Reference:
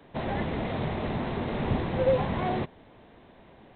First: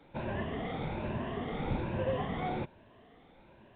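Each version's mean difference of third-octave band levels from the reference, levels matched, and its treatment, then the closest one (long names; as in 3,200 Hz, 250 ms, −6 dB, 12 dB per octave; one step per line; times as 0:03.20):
1.5 dB: rippled gain that drifts along the octave scale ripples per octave 1.4, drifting +1.2 Hz, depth 11 dB
level −7 dB
A-law companding 64 kbit/s 8,000 Hz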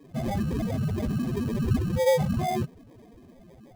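9.5 dB: expanding power law on the bin magnitudes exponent 3.5
in parallel at −4.5 dB: sample-rate reduction 1,400 Hz, jitter 0%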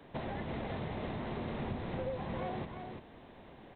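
3.5 dB: downward compressor 6 to 1, threshold −35 dBFS, peak gain reduction 15.5 dB
single-tap delay 342 ms −6 dB
level −1.5 dB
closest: first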